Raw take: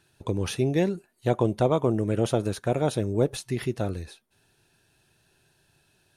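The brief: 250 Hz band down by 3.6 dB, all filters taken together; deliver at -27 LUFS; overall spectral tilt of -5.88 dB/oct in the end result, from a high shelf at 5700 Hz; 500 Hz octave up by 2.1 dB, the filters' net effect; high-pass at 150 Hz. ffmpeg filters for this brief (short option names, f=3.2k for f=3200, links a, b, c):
-af "highpass=150,equalizer=f=250:t=o:g=-6.5,equalizer=f=500:t=o:g=4.5,highshelf=f=5.7k:g=-4"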